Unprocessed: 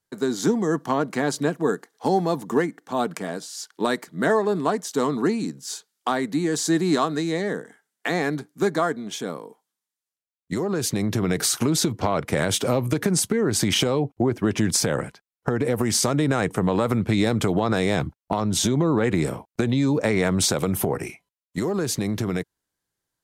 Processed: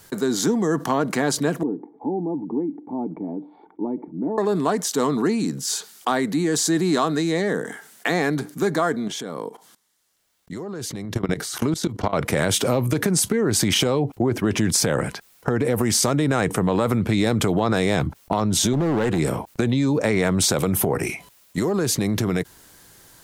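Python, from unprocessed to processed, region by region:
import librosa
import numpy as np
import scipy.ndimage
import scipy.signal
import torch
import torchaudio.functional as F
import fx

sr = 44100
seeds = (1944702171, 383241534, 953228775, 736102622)

y = fx.chain(x, sr, fx.formant_cascade(vowel='u'),
    fx.notch(hz=1600.0, q=12.0), at=(1.63, 4.38))
y = fx.chain(y, sr, fx.high_shelf(hz=11000.0, db=-8.5),
    fx.notch(hz=2500.0, q=14.0),
    fx.level_steps(step_db=22), at=(9.08, 12.13))
y = fx.chain(y, sr, fx.notch(hz=2200.0, q=5.3),
    fx.clip_hard(threshold_db=-18.5), at=(18.73, 19.19))
y = fx.high_shelf(y, sr, hz=11000.0, db=4.0)
y = fx.env_flatten(y, sr, amount_pct=50)
y = F.gain(torch.from_numpy(y), -1.0).numpy()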